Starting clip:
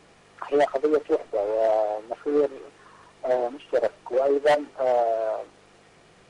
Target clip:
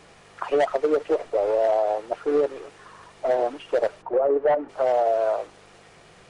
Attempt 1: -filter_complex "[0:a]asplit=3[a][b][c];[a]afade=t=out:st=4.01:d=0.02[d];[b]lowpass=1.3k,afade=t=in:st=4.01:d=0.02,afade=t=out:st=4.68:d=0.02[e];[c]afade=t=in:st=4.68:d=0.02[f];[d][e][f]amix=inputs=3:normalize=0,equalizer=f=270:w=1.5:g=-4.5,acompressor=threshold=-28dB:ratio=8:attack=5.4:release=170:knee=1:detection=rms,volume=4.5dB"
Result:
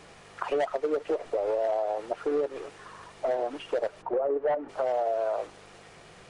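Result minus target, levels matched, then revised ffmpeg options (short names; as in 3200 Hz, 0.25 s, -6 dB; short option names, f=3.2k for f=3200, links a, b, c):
compressor: peak gain reduction +6.5 dB
-filter_complex "[0:a]asplit=3[a][b][c];[a]afade=t=out:st=4.01:d=0.02[d];[b]lowpass=1.3k,afade=t=in:st=4.01:d=0.02,afade=t=out:st=4.68:d=0.02[e];[c]afade=t=in:st=4.68:d=0.02[f];[d][e][f]amix=inputs=3:normalize=0,equalizer=f=270:w=1.5:g=-4.5,acompressor=threshold=-20.5dB:ratio=8:attack=5.4:release=170:knee=1:detection=rms,volume=4.5dB"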